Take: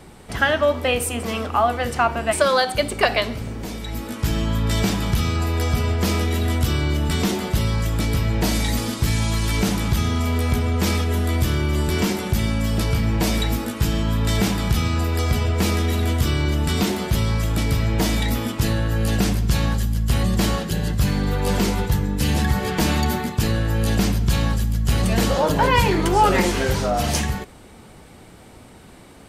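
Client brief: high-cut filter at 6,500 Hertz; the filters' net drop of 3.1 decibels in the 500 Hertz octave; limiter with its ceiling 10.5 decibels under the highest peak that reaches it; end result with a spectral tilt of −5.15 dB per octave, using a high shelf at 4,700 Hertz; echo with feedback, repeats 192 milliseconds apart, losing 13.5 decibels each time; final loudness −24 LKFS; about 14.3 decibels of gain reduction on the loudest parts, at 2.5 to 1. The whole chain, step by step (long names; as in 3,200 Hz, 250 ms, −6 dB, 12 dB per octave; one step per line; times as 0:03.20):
low-pass filter 6,500 Hz
parametric band 500 Hz −4 dB
high-shelf EQ 4,700 Hz +4.5 dB
downward compressor 2.5 to 1, threshold −37 dBFS
brickwall limiter −27 dBFS
repeating echo 192 ms, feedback 21%, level −13.5 dB
level +12 dB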